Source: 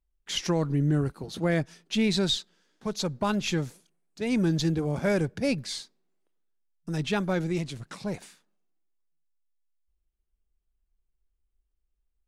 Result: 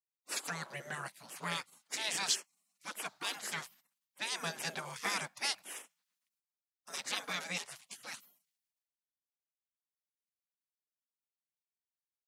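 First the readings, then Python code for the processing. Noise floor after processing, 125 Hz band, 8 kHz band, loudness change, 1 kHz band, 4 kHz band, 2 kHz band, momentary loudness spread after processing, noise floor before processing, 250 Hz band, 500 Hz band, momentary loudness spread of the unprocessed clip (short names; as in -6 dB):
under -85 dBFS, -24.0 dB, +0.5 dB, -9.5 dB, -5.0 dB, -5.5 dB, -2.5 dB, 13 LU, -78 dBFS, -25.5 dB, -19.0 dB, 11 LU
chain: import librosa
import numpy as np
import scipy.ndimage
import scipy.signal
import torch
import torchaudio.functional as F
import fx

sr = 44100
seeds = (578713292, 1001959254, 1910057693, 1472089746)

y = scipy.signal.sosfilt(scipy.signal.butter(4, 330.0, 'highpass', fs=sr, output='sos'), x)
y = fx.spec_gate(y, sr, threshold_db=-20, keep='weak')
y = y * 10.0 ** (6.5 / 20.0)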